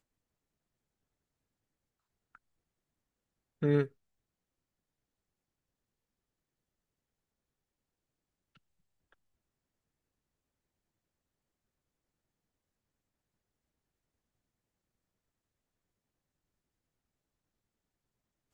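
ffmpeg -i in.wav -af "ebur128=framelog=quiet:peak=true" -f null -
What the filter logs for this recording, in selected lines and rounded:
Integrated loudness:
  I:         -31.6 LUFS
  Threshold: -43.8 LUFS
Loudness range:
  LRA:         1.5 LU
  Threshold: -58.8 LUFS
  LRA low:   -40.1 LUFS
  LRA high:  -38.5 LUFS
True peak:
  Peak:      -15.7 dBFS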